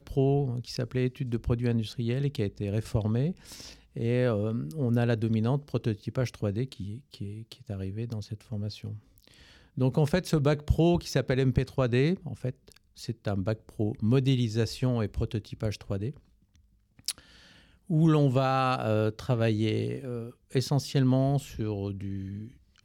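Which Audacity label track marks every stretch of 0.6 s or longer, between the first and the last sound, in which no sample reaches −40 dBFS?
16.110000	17.060000	silence
17.200000	17.900000	silence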